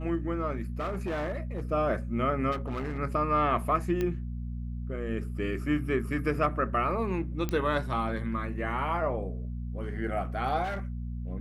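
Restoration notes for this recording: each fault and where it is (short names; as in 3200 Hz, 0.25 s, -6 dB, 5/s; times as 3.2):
hum 60 Hz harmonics 4 -35 dBFS
0.79–1.72 clipped -28 dBFS
2.51–2.99 clipped -29 dBFS
4.01 pop -18 dBFS
7.49 pop -17 dBFS
10.63–10.85 clipped -29 dBFS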